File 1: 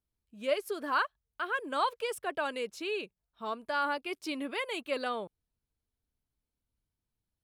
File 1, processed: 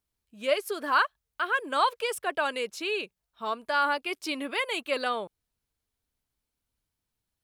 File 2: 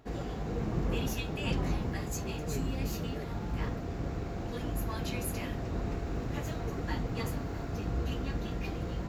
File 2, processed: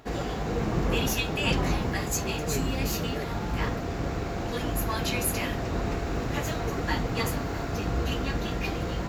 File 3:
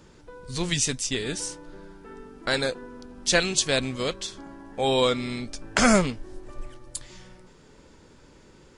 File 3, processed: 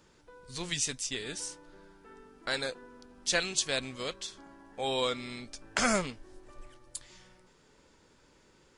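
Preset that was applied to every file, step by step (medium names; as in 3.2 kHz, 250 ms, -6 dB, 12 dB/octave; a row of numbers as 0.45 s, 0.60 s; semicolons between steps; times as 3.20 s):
bass shelf 470 Hz -7 dB; peak normalisation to -12 dBFS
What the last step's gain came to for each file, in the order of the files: +6.5 dB, +10.5 dB, -6.0 dB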